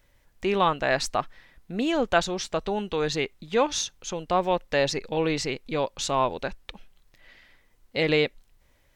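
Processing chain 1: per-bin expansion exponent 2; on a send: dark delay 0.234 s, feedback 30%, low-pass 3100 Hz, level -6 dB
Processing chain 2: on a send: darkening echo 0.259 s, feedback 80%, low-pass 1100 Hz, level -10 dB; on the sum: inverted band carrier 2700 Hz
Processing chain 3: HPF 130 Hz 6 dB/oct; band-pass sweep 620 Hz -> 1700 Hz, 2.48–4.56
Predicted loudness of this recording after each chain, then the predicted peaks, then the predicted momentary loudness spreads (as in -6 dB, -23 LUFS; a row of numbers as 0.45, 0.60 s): -30.0, -24.5, -34.0 LUFS; -12.0, -6.5, -14.5 dBFS; 11, 13, 15 LU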